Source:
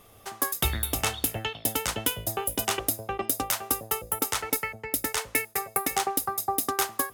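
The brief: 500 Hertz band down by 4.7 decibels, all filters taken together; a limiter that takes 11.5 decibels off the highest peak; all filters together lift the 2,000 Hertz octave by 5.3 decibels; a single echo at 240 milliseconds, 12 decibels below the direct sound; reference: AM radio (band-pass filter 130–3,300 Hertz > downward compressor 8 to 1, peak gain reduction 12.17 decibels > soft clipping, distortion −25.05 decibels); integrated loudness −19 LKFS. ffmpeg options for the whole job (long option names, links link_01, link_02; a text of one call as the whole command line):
ffmpeg -i in.wav -af "equalizer=frequency=500:width_type=o:gain=-6.5,equalizer=frequency=2000:width_type=o:gain=7.5,alimiter=limit=-19dB:level=0:latency=1,highpass=130,lowpass=3300,aecho=1:1:240:0.251,acompressor=threshold=-38dB:ratio=8,asoftclip=threshold=-26.5dB,volume=23dB" out.wav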